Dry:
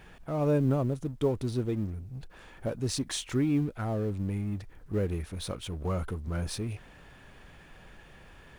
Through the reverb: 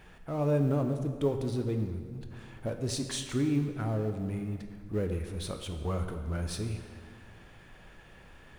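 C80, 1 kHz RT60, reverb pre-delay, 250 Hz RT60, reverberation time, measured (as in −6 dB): 9.0 dB, 1.8 s, 16 ms, 2.2 s, 1.9 s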